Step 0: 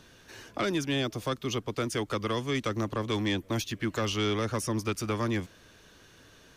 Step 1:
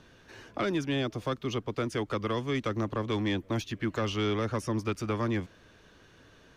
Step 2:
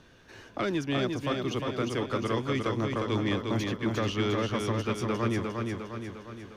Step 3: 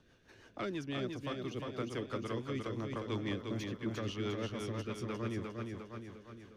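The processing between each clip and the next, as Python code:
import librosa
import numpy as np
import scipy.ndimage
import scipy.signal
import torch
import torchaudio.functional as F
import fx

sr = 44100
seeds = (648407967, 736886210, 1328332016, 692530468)

y1 = fx.lowpass(x, sr, hz=2700.0, slope=6)
y2 = fx.echo_feedback(y1, sr, ms=354, feedback_pct=54, wet_db=-4)
y3 = fx.rotary(y2, sr, hz=6.0)
y3 = F.gain(torch.from_numpy(y3), -7.5).numpy()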